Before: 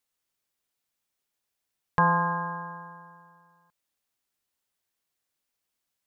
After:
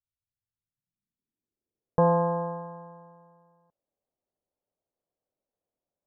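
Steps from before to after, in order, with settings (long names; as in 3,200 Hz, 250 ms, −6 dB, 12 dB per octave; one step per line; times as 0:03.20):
dynamic equaliser 390 Hz, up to +5 dB, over −38 dBFS, Q 0.74
low-pass filter sweep 100 Hz → 590 Hz, 0:00.42–0:02.07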